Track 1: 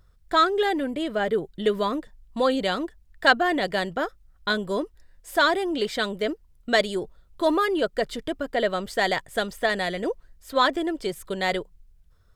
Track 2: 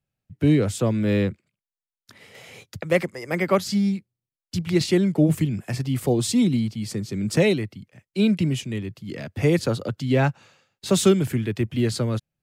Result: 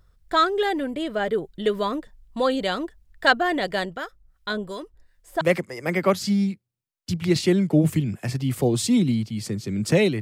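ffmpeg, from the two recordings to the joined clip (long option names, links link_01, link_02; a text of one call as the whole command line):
ffmpeg -i cue0.wav -i cue1.wav -filter_complex "[0:a]asettb=1/sr,asplit=3[link_01][link_02][link_03];[link_01]atrim=end=3.854[link_04];[link_02]atrim=start=3.85:end=5.41,asetpts=PTS-STARTPTS,afade=type=in:duration=0.004:curve=qsin,afade=type=out:start_time=1.556:duration=0.004:curve=qsin,acrossover=split=1200[link_05][link_06];[link_05]aeval=exprs='val(0)*(1-0.7/2+0.7/2*cos(2*PI*2.7*n/s))':channel_layout=same[link_07];[link_06]aeval=exprs='val(0)*(1-0.7/2-0.7/2*cos(2*PI*2.7*n/s))':channel_layout=same[link_08];[link_07][link_08]amix=inputs=2:normalize=0[link_09];[link_03]atrim=start=5.406[link_10];[link_04][link_09]acrossfade=duration=0.004:curve1=hsin:curve2=qsin[link_11];[link_11][link_10]acrossfade=duration=0.004:curve1=qsin:curve2=hsin,apad=whole_dur=10.21,atrim=end=10.21,atrim=end=5.412[link_12];[1:a]atrim=start=2.858:end=7.66[link_13];[link_12][link_13]acrossfade=duration=0.004:curve1=hsin:curve2=hsin" out.wav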